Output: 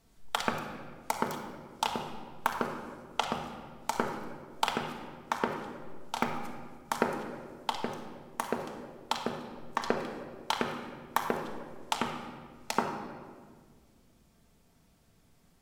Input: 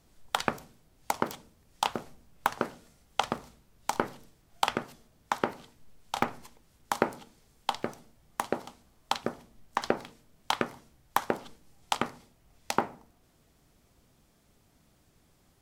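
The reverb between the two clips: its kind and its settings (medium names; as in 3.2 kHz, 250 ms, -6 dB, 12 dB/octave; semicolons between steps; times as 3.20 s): simulated room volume 2300 m³, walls mixed, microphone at 1.6 m; trim -3 dB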